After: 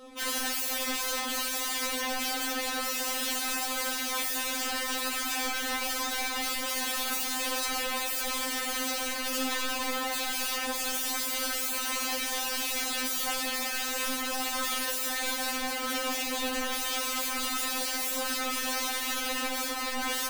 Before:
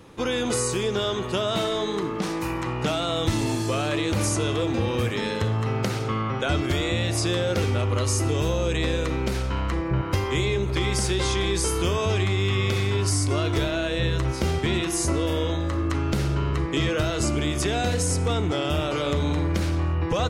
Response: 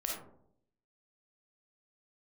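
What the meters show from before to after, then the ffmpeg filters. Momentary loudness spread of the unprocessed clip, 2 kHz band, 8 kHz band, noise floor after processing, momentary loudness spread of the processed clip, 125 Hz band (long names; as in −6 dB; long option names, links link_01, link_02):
3 LU, 0.0 dB, +1.0 dB, −33 dBFS, 1 LU, below −40 dB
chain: -filter_complex "[0:a]aeval=exprs='(mod(22.4*val(0)+1,2)-1)/22.4':channel_layout=same,asplit=2[link_01][link_02];[1:a]atrim=start_sample=2205,afade=type=out:start_time=0.37:duration=0.01,atrim=end_sample=16758,atrim=end_sample=3969[link_03];[link_02][link_03]afir=irnorm=-1:irlink=0,volume=-8dB[link_04];[link_01][link_04]amix=inputs=2:normalize=0,afftfilt=real='re*3.46*eq(mod(b,12),0)':imag='im*3.46*eq(mod(b,12),0)':win_size=2048:overlap=0.75"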